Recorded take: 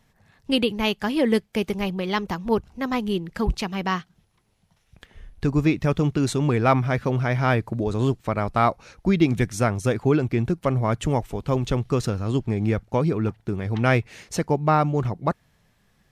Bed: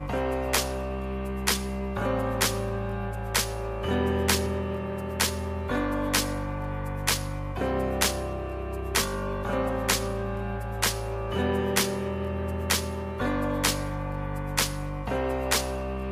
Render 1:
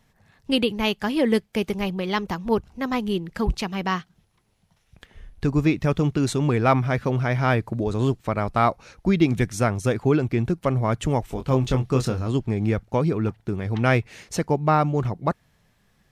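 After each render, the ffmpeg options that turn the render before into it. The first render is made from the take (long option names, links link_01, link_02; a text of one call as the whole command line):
ffmpeg -i in.wav -filter_complex "[0:a]asettb=1/sr,asplit=3[link_01][link_02][link_03];[link_01]atrim=end=11.254[link_04];[link_02]atrim=start=11.25:end=12.28,asetpts=PTS-STARTPTS,afade=type=in:duration=0.004:curve=qsin,afade=type=out:start_time=1.026:duration=0.004:curve=qsin,asplit=2[link_05][link_06];[link_06]adelay=23,volume=-6dB[link_07];[link_05][link_07]amix=inputs=2:normalize=0,atrim=end_sample=45423[link_08];[link_03]atrim=start=12.276[link_09];[link_04][link_08]acrossfade=duration=0.004:curve1=hsin:curve2=qsin[link_10];[link_10][link_09]acrossfade=duration=0.004:curve1=qsin:curve2=hsin" out.wav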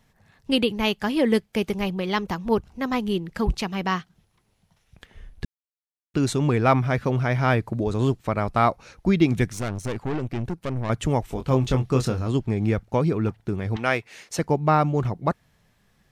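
ffmpeg -i in.wav -filter_complex "[0:a]asettb=1/sr,asplit=3[link_01][link_02][link_03];[link_01]atrim=end=9.534[link_04];[link_02]atrim=start=9.53:end=10.9,asetpts=PTS-STARTPTS,afade=type=in:duration=0.004:curve=qsin,afade=type=out:start_time=1.366:duration=0.004:curve=qsin,aeval=exprs='(tanh(15.8*val(0)+0.7)-tanh(0.7))/15.8':channel_layout=same[link_05];[link_03]atrim=start=10.896[link_06];[link_04][link_05]acrossfade=duration=0.004:curve1=hsin:curve2=qsin[link_07];[link_07][link_06]acrossfade=duration=0.004:curve1=qsin:curve2=hsin,asettb=1/sr,asplit=3[link_08][link_09][link_10];[link_08]atrim=end=13.764[link_11];[link_09]atrim=start=13.76:end=14.39,asetpts=PTS-STARTPTS,afade=type=in:duration=0.004:curve=qsin,afade=type=out:start_time=0.626:duration=0.004:curve=qsin,highpass=frequency=550:poles=1[link_12];[link_10]atrim=start=14.386[link_13];[link_11][link_12]acrossfade=duration=0.004:curve1=hsin:curve2=qsin[link_14];[link_14][link_13]acrossfade=duration=0.004:curve1=qsin:curve2=hsin,asplit=3[link_15][link_16][link_17];[link_15]atrim=end=5.45,asetpts=PTS-STARTPTS,afade=type=out:start_time=5.446:duration=0.004:curve=hsin[link_18];[link_16]atrim=start=5.45:end=6.14,asetpts=PTS-STARTPTS,volume=0[link_19];[link_17]atrim=start=6.14,asetpts=PTS-STARTPTS,afade=type=in:duration=0.004:curve=hsin[link_20];[link_18][link_19][link_20]concat=n=3:v=0:a=1" out.wav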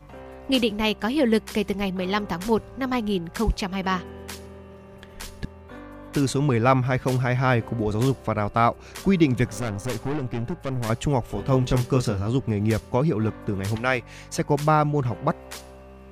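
ffmpeg -i in.wav -i bed.wav -filter_complex "[1:a]volume=-13.5dB[link_01];[0:a][link_01]amix=inputs=2:normalize=0" out.wav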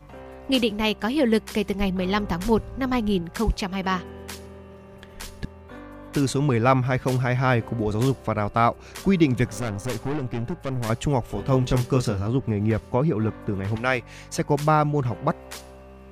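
ffmpeg -i in.wav -filter_complex "[0:a]asettb=1/sr,asplit=3[link_01][link_02][link_03];[link_01]atrim=end=1.804[link_04];[link_02]atrim=start=1.8:end=3.22,asetpts=PTS-STARTPTS,afade=type=in:duration=0.004:curve=qsin,afade=type=out:start_time=1.416:duration=0.004:curve=qsin,lowshelf=frequency=110:gain=11[link_05];[link_03]atrim=start=3.216[link_06];[link_04][link_05]acrossfade=duration=0.004:curve1=hsin:curve2=qsin[link_07];[link_07][link_06]acrossfade=duration=0.004:curve1=qsin:curve2=hsin,asettb=1/sr,asplit=3[link_08][link_09][link_10];[link_08]atrim=end=12.274[link_11];[link_09]atrim=start=12.27:end=13.77,asetpts=PTS-STARTPTS,afade=type=in:duration=0.004:curve=qsin,afade=type=out:start_time=1.496:duration=0.004:curve=qsin,acrossover=split=2800[link_12][link_13];[link_13]acompressor=threshold=-55dB:ratio=4:attack=1:release=60[link_14];[link_12][link_14]amix=inputs=2:normalize=0[link_15];[link_10]atrim=start=13.766[link_16];[link_11][link_15]acrossfade=duration=0.004:curve1=hsin:curve2=qsin[link_17];[link_17][link_16]acrossfade=duration=0.004:curve1=qsin:curve2=hsin" out.wav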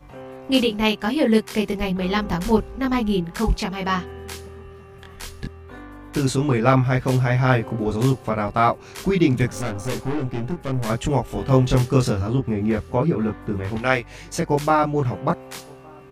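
ffmpeg -i in.wav -filter_complex "[0:a]asplit=2[link_01][link_02];[link_02]adelay=23,volume=-2dB[link_03];[link_01][link_03]amix=inputs=2:normalize=0,asplit=2[link_04][link_05];[link_05]adelay=1166,volume=-28dB,highshelf=frequency=4000:gain=-26.2[link_06];[link_04][link_06]amix=inputs=2:normalize=0" out.wav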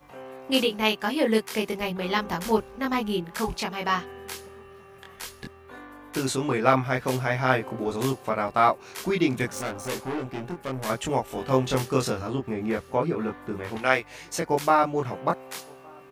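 ffmpeg -i in.wav -af "lowpass=frequency=1600:poles=1,aemphasis=mode=production:type=riaa" out.wav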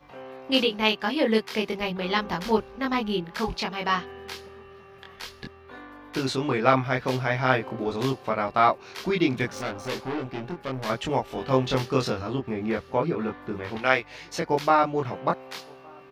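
ffmpeg -i in.wav -af "highshelf=frequency=6200:width_type=q:width=1.5:gain=-9.5" out.wav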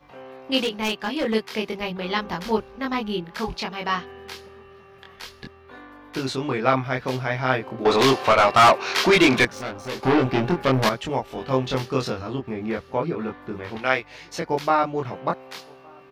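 ffmpeg -i in.wav -filter_complex "[0:a]asettb=1/sr,asplit=3[link_01][link_02][link_03];[link_01]atrim=end=0.584[link_04];[link_02]atrim=start=0.58:end=1.34,asetpts=PTS-STARTPTS,afade=type=in:duration=0.004:curve=qsin,afade=type=out:start_time=0.756:duration=0.004:curve=qsin,asoftclip=type=hard:threshold=-19.5dB[link_05];[link_03]atrim=start=1.336[link_06];[link_04][link_05]acrossfade=duration=0.004:curve1=hsin:curve2=qsin[link_07];[link_07][link_06]acrossfade=duration=0.004:curve1=qsin:curve2=hsin,asettb=1/sr,asplit=3[link_08][link_09][link_10];[link_08]atrim=end=7.854[link_11];[link_09]atrim=start=7.85:end=9.45,asetpts=PTS-STARTPTS,afade=type=in:duration=0.004:curve=qsin,afade=type=out:start_time=1.596:duration=0.004:curve=qsin,asplit=2[link_12][link_13];[link_13]highpass=frequency=720:poles=1,volume=25dB,asoftclip=type=tanh:threshold=-6dB[link_14];[link_12][link_14]amix=inputs=2:normalize=0,lowpass=frequency=5500:poles=1,volume=-6dB[link_15];[link_10]atrim=start=9.446[link_16];[link_11][link_15]acrossfade=duration=0.004:curve1=hsin:curve2=qsin[link_17];[link_17][link_16]acrossfade=duration=0.004:curve1=qsin:curve2=hsin,asplit=3[link_18][link_19][link_20];[link_18]atrim=end=10.032[link_21];[link_19]atrim=start=10.028:end=10.892,asetpts=PTS-STARTPTS,volume=12dB[link_22];[link_20]atrim=start=10.888[link_23];[link_21][link_22]acrossfade=duration=0.004:curve1=hsin:curve2=hsin[link_24];[link_24][link_23]acrossfade=duration=0.004:curve1=hsin:curve2=hsin" out.wav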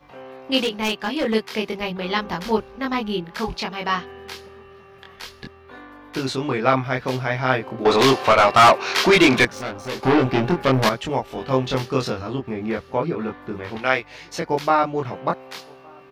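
ffmpeg -i in.wav -af "volume=2dB,alimiter=limit=-2dB:level=0:latency=1" out.wav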